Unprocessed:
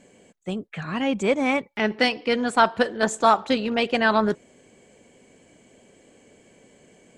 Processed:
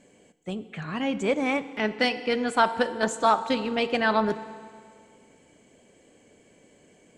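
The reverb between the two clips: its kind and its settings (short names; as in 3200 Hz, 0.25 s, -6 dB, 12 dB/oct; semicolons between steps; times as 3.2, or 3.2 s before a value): FDN reverb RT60 2 s, low-frequency decay 1.05×, high-frequency decay 0.9×, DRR 12.5 dB; gain -3.5 dB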